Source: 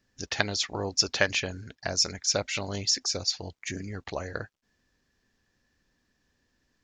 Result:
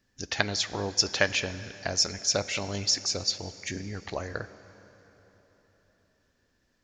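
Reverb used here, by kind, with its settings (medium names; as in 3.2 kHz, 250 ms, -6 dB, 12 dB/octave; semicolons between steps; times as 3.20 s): plate-style reverb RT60 4.2 s, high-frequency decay 0.75×, DRR 13.5 dB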